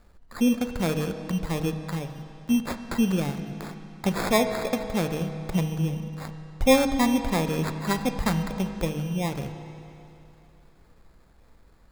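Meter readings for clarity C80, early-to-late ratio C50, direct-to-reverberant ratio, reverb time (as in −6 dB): 9.5 dB, 8.5 dB, 7.5 dB, 2.9 s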